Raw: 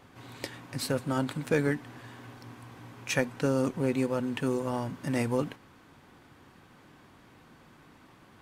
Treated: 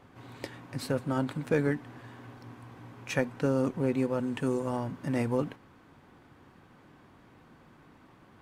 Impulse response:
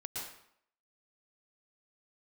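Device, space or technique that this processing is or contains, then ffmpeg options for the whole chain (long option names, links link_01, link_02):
behind a face mask: -filter_complex "[0:a]highshelf=frequency=2500:gain=-8,asettb=1/sr,asplit=3[link_01][link_02][link_03];[link_01]atrim=end=4.194[link_04];[link_02]atrim=start=4.19:end=4.77,asetpts=PTS-STARTPTS,afade=type=in:duration=0.004:curve=qsin,afade=type=out:start_time=0.576:duration=0.004:curve=qsin,equalizer=frequency=8000:width=1.5:gain=7[link_05];[link_03]atrim=start=4.766[link_06];[link_04][link_05]acrossfade=duration=0.004:curve1=hsin:curve2=qsin[link_07];[link_07][link_06]acrossfade=duration=0.004:curve1=qsin:curve2=hsin"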